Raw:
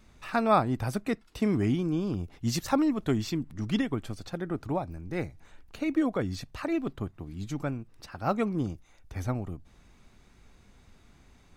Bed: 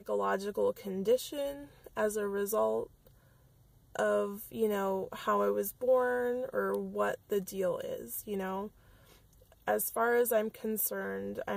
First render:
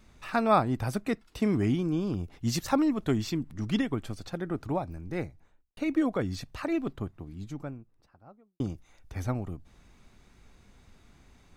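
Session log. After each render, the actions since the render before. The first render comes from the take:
0:05.06–0:05.77: fade out and dull
0:06.72–0:08.60: fade out and dull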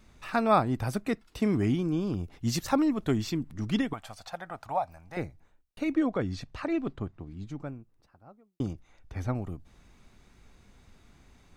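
0:03.93–0:05.17: low shelf with overshoot 510 Hz −11.5 dB, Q 3
0:05.94–0:07.65: high-frequency loss of the air 61 metres
0:08.73–0:09.35: high-shelf EQ 6,400 Hz −11 dB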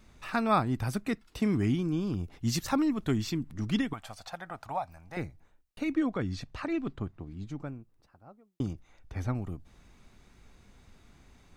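dynamic equaliser 580 Hz, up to −6 dB, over −41 dBFS, Q 1.1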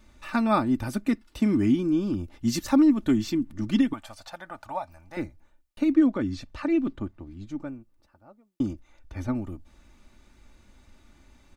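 comb filter 3.4 ms, depth 54%
dynamic equaliser 270 Hz, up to +6 dB, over −39 dBFS, Q 1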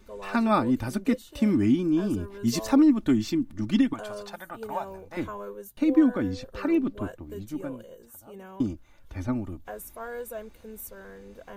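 mix in bed −8.5 dB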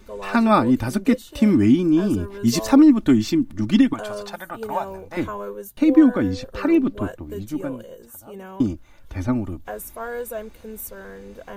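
level +6.5 dB

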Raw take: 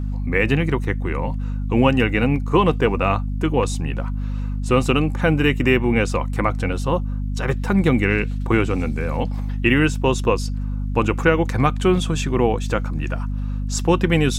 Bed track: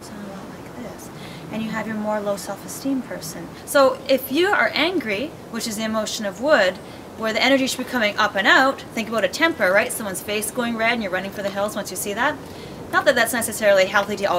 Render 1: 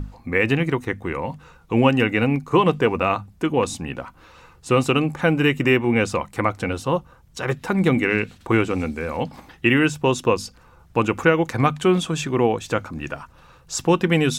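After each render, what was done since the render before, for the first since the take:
mains-hum notches 50/100/150/200/250 Hz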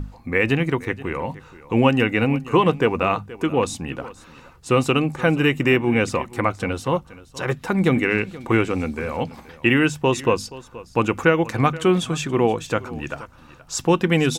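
single-tap delay 476 ms −18.5 dB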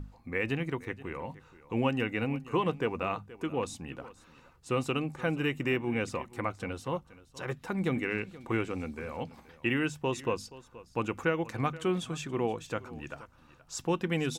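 level −12 dB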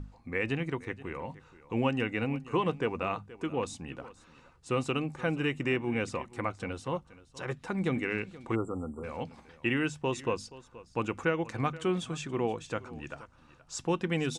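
0:08.55–0:09.04: time-frequency box erased 1,400–7,100 Hz
Butterworth low-pass 10,000 Hz 36 dB per octave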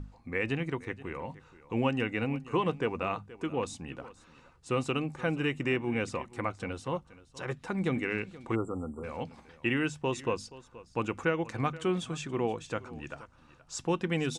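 no processing that can be heard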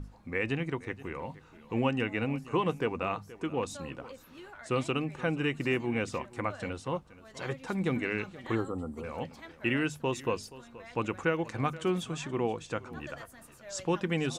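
mix in bed track −31 dB

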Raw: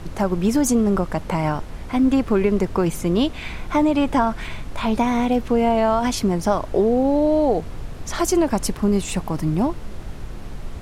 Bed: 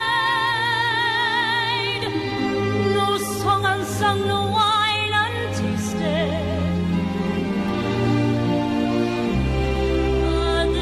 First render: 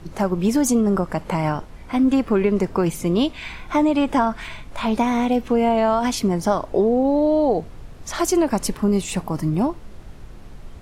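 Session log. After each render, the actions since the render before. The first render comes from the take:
noise reduction from a noise print 7 dB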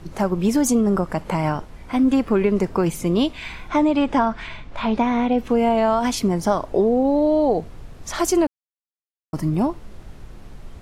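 0:03.68–0:05.37: low-pass filter 7,200 Hz → 3,300 Hz
0:08.47–0:09.33: silence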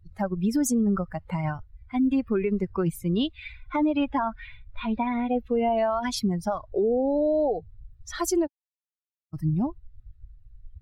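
spectral dynamics exaggerated over time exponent 2
brickwall limiter −17 dBFS, peak gain reduction 7.5 dB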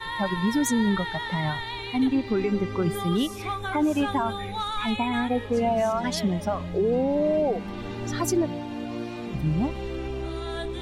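mix in bed −12 dB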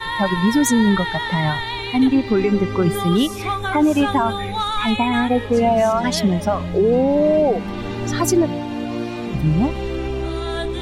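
level +7.5 dB

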